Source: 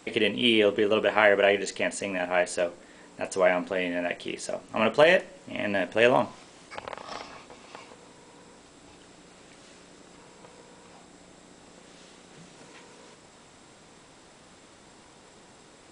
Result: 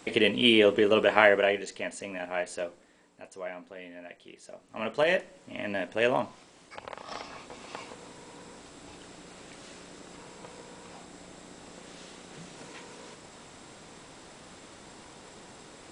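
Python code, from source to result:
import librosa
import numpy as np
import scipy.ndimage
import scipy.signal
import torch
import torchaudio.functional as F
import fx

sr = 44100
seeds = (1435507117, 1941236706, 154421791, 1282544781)

y = fx.gain(x, sr, db=fx.line((1.2, 1.0), (1.67, -7.0), (2.66, -7.0), (3.32, -16.0), (4.38, -16.0), (5.14, -5.0), (6.77, -5.0), (7.64, 3.5)))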